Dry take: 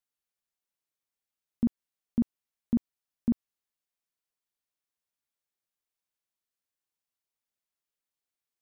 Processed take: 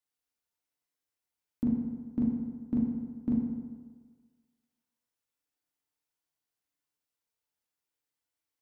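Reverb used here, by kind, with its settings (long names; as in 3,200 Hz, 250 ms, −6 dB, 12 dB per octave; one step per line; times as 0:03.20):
feedback delay network reverb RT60 1.5 s, low-frequency decay 0.9×, high-frequency decay 0.55×, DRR −3 dB
level −3 dB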